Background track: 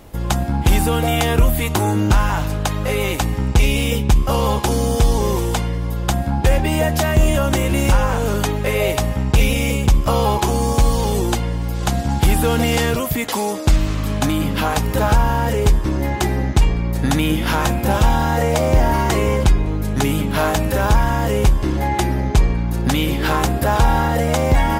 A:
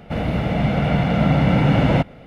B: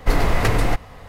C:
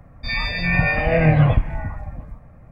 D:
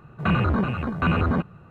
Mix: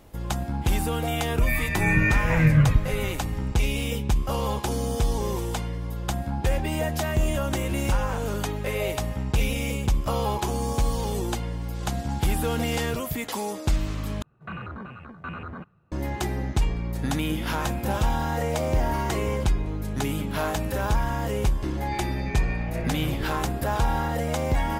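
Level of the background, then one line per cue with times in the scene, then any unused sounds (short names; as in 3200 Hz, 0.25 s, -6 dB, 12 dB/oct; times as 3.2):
background track -9 dB
1.18 add C -2.5 dB + fixed phaser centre 1800 Hz, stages 4
14.22 replace with D -16.5 dB + dynamic EQ 1500 Hz, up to +6 dB, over -40 dBFS, Q 0.92
21.63 add C -16.5 dB
not used: A, B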